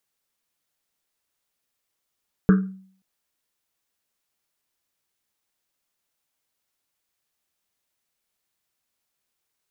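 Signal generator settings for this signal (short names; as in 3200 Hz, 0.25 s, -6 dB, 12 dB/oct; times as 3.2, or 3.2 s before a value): Risset drum length 0.53 s, pitch 190 Hz, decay 0.54 s, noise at 1400 Hz, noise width 430 Hz, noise 10%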